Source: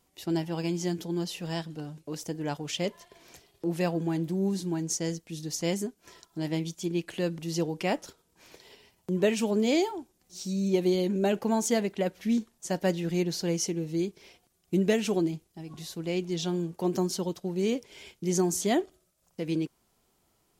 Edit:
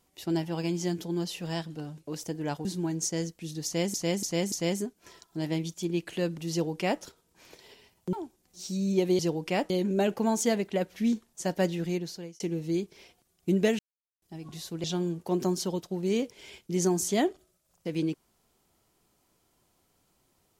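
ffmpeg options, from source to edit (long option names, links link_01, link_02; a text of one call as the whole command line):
ffmpeg -i in.wav -filter_complex "[0:a]asplit=12[link_01][link_02][link_03][link_04][link_05][link_06][link_07][link_08][link_09][link_10][link_11][link_12];[link_01]atrim=end=2.652[link_13];[link_02]atrim=start=4.528:end=5.822[link_14];[link_03]atrim=start=5.528:end=5.822[link_15];[link_04]atrim=start=5.528:end=5.822[link_16];[link_05]atrim=start=5.528:end=9.142[link_17];[link_06]atrim=start=9.888:end=10.952[link_18];[link_07]atrim=start=7.518:end=8.032[link_19];[link_08]atrim=start=10.948:end=13.65,asetpts=PTS-STARTPTS,afade=type=out:start_time=2.042:duration=0.66[link_20];[link_09]atrim=start=13.65:end=15.04,asetpts=PTS-STARTPTS,afade=type=in:duration=0.004:curve=hsin,afade=type=out:start_time=1.386:duration=0.004:curve=hsin[link_21];[link_10]atrim=start=15.04:end=15.47,asetpts=PTS-STARTPTS,volume=0[link_22];[link_11]atrim=start=15.47:end=16.092,asetpts=PTS-STARTPTS,afade=type=in:duration=0.004:curve=hsin[link_23];[link_12]atrim=start=16.368[link_24];[link_13][link_14]acrossfade=duration=0.004:curve1=hsin:curve2=hsin[link_25];[link_25][link_15]acrossfade=duration=0.004:curve1=hsin:curve2=hsin[link_26];[link_26][link_16]acrossfade=duration=0.004:curve1=hsin:curve2=hsin[link_27];[link_27][link_17]acrossfade=duration=0.004:curve1=hsin:curve2=hsin[link_28];[link_28][link_18]acrossfade=duration=0.004:curve1=hsin:curve2=hsin[link_29];[link_29][link_19]acrossfade=duration=0.004:curve1=hsin:curve2=hsin[link_30];[link_20][link_21][link_22][link_23]concat=n=4:v=0:a=1[link_31];[link_30][link_31]acrossfade=duration=0.004:curve1=hsin:curve2=hsin[link_32];[link_32][link_24]acrossfade=duration=0.004:curve1=hsin:curve2=hsin" out.wav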